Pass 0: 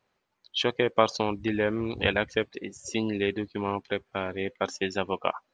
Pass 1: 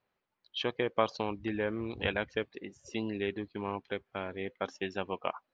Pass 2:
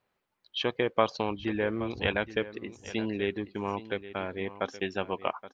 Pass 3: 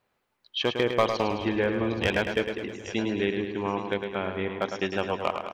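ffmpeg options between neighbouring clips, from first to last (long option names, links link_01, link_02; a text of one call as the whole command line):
ffmpeg -i in.wav -af "lowpass=4200,volume=-6.5dB" out.wav
ffmpeg -i in.wav -af "aecho=1:1:823:0.178,volume=3.5dB" out.wav
ffmpeg -i in.wav -af "volume=16dB,asoftclip=hard,volume=-16dB,aecho=1:1:106|212|318|424|530|636|742:0.447|0.259|0.15|0.0872|0.0505|0.0293|0.017,volume=3dB" out.wav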